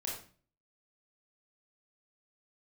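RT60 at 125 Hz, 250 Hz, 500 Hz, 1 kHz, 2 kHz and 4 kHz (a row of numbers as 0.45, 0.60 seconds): 0.60, 0.55, 0.45, 0.40, 0.40, 0.35 seconds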